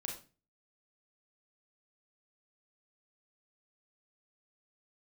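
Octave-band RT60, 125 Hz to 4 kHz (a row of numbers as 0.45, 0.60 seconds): 0.50, 0.45, 0.35, 0.30, 0.30, 0.30 seconds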